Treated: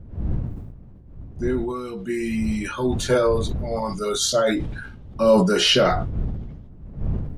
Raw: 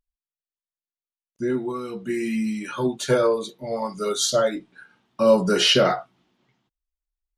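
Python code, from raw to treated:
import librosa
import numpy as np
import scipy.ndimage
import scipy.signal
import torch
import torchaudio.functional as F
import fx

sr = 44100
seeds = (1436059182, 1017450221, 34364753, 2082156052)

y = fx.dmg_wind(x, sr, seeds[0], corner_hz=110.0, level_db=-32.0)
y = fx.sustainer(y, sr, db_per_s=46.0)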